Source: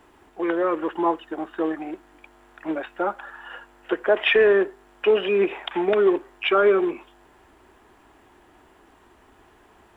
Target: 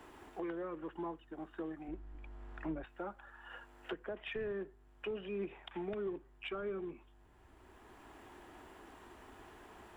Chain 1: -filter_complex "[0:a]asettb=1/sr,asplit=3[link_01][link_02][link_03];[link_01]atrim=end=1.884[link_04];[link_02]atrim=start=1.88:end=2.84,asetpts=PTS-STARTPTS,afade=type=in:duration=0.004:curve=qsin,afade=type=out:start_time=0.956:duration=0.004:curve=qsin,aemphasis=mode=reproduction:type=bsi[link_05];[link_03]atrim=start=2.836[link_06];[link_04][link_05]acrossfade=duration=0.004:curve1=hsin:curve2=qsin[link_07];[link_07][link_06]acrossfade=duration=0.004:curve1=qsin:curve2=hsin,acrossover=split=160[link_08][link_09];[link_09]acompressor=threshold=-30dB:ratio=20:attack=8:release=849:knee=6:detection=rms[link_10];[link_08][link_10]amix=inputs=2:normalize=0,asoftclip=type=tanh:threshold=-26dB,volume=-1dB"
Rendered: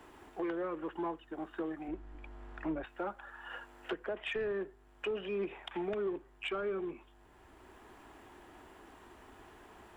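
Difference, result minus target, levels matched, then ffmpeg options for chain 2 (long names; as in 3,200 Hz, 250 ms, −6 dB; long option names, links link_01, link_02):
downward compressor: peak gain reduction −6 dB
-filter_complex "[0:a]asettb=1/sr,asplit=3[link_01][link_02][link_03];[link_01]atrim=end=1.884[link_04];[link_02]atrim=start=1.88:end=2.84,asetpts=PTS-STARTPTS,afade=type=in:duration=0.004:curve=qsin,afade=type=out:start_time=0.956:duration=0.004:curve=qsin,aemphasis=mode=reproduction:type=bsi[link_05];[link_03]atrim=start=2.836[link_06];[link_04][link_05]acrossfade=duration=0.004:curve1=hsin:curve2=qsin[link_07];[link_07][link_06]acrossfade=duration=0.004:curve1=qsin:curve2=hsin,acrossover=split=160[link_08][link_09];[link_09]acompressor=threshold=-36.5dB:ratio=20:attack=8:release=849:knee=6:detection=rms[link_10];[link_08][link_10]amix=inputs=2:normalize=0,asoftclip=type=tanh:threshold=-26dB,volume=-1dB"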